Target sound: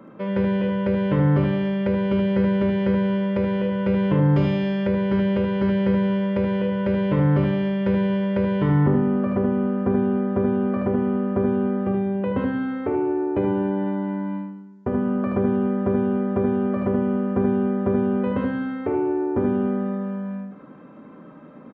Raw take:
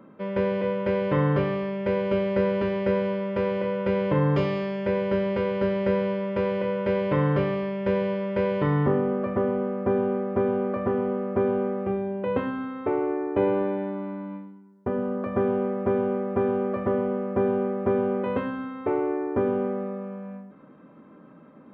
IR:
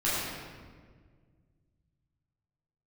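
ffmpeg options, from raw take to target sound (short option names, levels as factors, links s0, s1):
-filter_complex "[0:a]aresample=16000,aresample=44100,aecho=1:1:52|76:0.335|0.631,acrossover=split=320[s0][s1];[s1]acompressor=threshold=0.0224:ratio=3[s2];[s0][s2]amix=inputs=2:normalize=0,volume=1.68"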